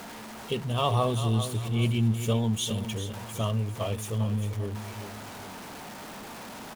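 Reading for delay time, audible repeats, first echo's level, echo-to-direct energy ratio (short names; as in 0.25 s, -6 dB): 0.396 s, 2, -10.5 dB, -10.0 dB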